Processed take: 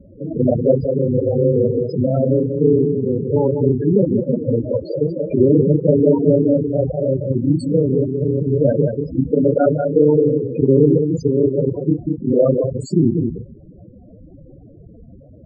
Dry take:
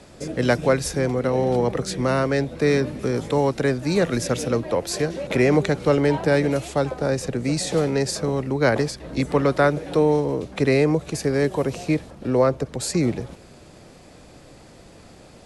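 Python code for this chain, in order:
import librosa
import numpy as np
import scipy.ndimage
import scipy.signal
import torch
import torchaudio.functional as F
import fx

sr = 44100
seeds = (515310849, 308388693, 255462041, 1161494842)

y = fx.local_reverse(x, sr, ms=30.0)
y = y + 10.0 ** (-5.5 / 20.0) * np.pad(y, (int(189 * sr / 1000.0), 0))[:len(y)]
y = fx.spec_topn(y, sr, count=8)
y = fx.low_shelf(y, sr, hz=490.0, db=6.0)
y = fx.end_taper(y, sr, db_per_s=260.0)
y = F.gain(torch.from_numpy(y), 3.0).numpy()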